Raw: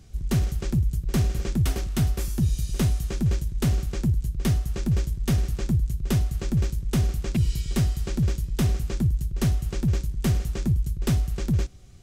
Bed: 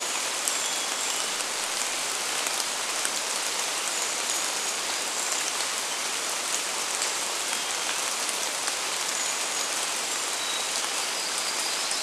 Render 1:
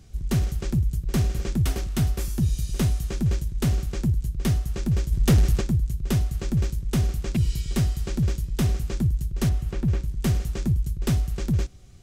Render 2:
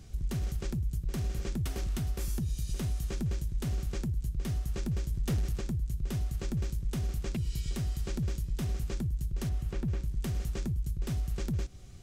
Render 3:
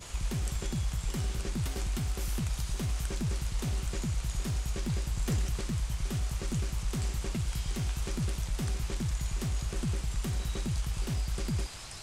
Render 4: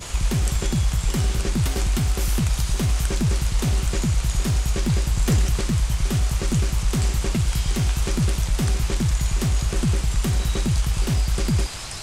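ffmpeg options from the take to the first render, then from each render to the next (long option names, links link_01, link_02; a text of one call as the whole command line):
ffmpeg -i in.wav -filter_complex "[0:a]asplit=3[link_01][link_02][link_03];[link_01]afade=type=out:start_time=5.11:duration=0.02[link_04];[link_02]aeval=exprs='0.237*sin(PI/2*1.58*val(0)/0.237)':channel_layout=same,afade=type=in:start_time=5.11:duration=0.02,afade=type=out:start_time=5.6:duration=0.02[link_05];[link_03]afade=type=in:start_time=5.6:duration=0.02[link_06];[link_04][link_05][link_06]amix=inputs=3:normalize=0,asettb=1/sr,asplit=3[link_07][link_08][link_09];[link_07]atrim=end=9.494[link_10];[link_08]atrim=start=9.49:end=10.08,asetpts=PTS-STARTPTS,afade=type=in:duration=0.004:curve=qsin,afade=type=out:start_time=0.586:duration=0.004:curve=qsin,acrossover=split=3000[link_11][link_12];[link_12]acompressor=threshold=-51dB:ratio=4:attack=1:release=60[link_13];[link_11][link_13]amix=inputs=2:normalize=0[link_14];[link_09]atrim=start=10.076[link_15];[link_10][link_14]acrossfade=duration=0.004:curve1=hsin:curve2=qsin[link_16];[link_16][link_15]acrossfade=duration=0.004:curve1=qsin:curve2=hsin" out.wav
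ffmpeg -i in.wav -af "acompressor=threshold=-27dB:ratio=5,alimiter=level_in=1dB:limit=-24dB:level=0:latency=1:release=83,volume=-1dB" out.wav
ffmpeg -i in.wav -i bed.wav -filter_complex "[1:a]volume=-17.5dB[link_01];[0:a][link_01]amix=inputs=2:normalize=0" out.wav
ffmpeg -i in.wav -af "volume=11dB" out.wav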